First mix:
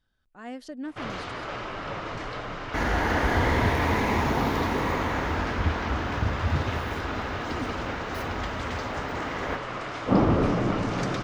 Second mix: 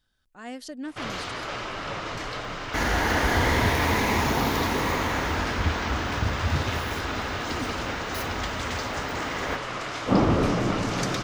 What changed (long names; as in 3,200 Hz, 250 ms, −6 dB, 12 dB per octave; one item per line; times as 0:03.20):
first sound: remove low-pass filter 12,000 Hz 12 dB per octave
master: add high-shelf EQ 3,500 Hz +11.5 dB